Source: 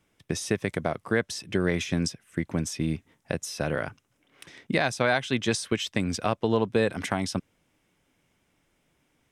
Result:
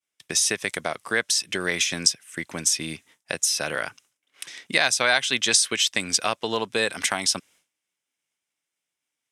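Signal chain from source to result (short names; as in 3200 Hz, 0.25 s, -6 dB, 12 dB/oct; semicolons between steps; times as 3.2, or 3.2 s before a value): LPF 10000 Hz 12 dB/oct; tilt +4.5 dB/oct; expander -53 dBFS; gain +2.5 dB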